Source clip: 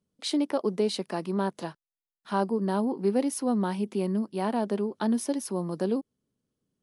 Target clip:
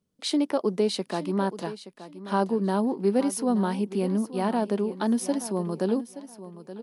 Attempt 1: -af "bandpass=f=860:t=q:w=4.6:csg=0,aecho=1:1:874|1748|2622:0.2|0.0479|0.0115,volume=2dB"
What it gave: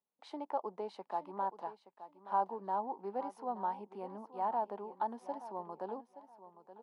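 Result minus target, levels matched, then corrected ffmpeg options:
1000 Hz band +10.0 dB
-af "aecho=1:1:874|1748|2622:0.2|0.0479|0.0115,volume=2dB"

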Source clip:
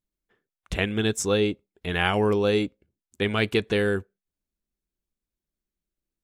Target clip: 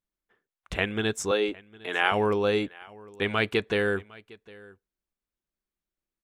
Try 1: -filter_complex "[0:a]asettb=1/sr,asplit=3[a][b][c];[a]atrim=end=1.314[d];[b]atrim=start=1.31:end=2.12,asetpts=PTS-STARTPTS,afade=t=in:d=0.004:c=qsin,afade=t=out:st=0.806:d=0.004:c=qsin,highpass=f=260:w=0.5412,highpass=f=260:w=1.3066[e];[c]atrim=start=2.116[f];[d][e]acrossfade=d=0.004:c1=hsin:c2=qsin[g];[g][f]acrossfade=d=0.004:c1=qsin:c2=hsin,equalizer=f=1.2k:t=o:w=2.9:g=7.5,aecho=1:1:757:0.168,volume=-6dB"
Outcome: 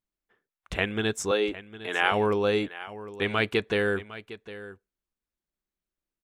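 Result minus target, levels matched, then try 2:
echo-to-direct +7 dB
-filter_complex "[0:a]asettb=1/sr,asplit=3[a][b][c];[a]atrim=end=1.314[d];[b]atrim=start=1.31:end=2.12,asetpts=PTS-STARTPTS,afade=t=in:d=0.004:c=qsin,afade=t=out:st=0.806:d=0.004:c=qsin,highpass=f=260:w=0.5412,highpass=f=260:w=1.3066[e];[c]atrim=start=2.116[f];[d][e]acrossfade=d=0.004:c1=hsin:c2=qsin[g];[g][f]acrossfade=d=0.004:c1=qsin:c2=hsin,equalizer=f=1.2k:t=o:w=2.9:g=7.5,aecho=1:1:757:0.075,volume=-6dB"

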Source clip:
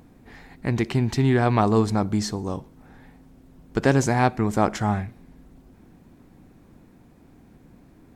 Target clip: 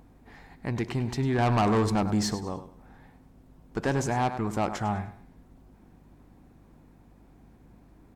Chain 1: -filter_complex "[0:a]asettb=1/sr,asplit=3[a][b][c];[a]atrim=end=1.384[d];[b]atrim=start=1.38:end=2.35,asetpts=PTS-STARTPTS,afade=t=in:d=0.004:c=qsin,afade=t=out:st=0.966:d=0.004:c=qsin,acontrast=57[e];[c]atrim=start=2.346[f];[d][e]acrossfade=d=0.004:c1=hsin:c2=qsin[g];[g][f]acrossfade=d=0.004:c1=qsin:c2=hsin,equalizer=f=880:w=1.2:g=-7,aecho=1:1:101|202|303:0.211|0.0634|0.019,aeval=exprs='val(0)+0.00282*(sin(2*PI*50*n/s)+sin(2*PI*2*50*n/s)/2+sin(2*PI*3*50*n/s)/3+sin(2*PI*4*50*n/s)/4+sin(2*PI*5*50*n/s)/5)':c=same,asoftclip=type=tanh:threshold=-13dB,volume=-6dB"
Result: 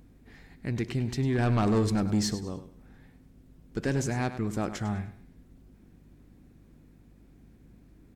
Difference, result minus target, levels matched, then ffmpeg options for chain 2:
1000 Hz band -6.5 dB
-filter_complex "[0:a]asettb=1/sr,asplit=3[a][b][c];[a]atrim=end=1.384[d];[b]atrim=start=1.38:end=2.35,asetpts=PTS-STARTPTS,afade=t=in:d=0.004:c=qsin,afade=t=out:st=0.966:d=0.004:c=qsin,acontrast=57[e];[c]atrim=start=2.346[f];[d][e]acrossfade=d=0.004:c1=hsin:c2=qsin[g];[g][f]acrossfade=d=0.004:c1=qsin:c2=hsin,equalizer=f=880:w=1.2:g=4.5,aecho=1:1:101|202|303:0.211|0.0634|0.019,aeval=exprs='val(0)+0.00282*(sin(2*PI*50*n/s)+sin(2*PI*2*50*n/s)/2+sin(2*PI*3*50*n/s)/3+sin(2*PI*4*50*n/s)/4+sin(2*PI*5*50*n/s)/5)':c=same,asoftclip=type=tanh:threshold=-13dB,volume=-6dB"

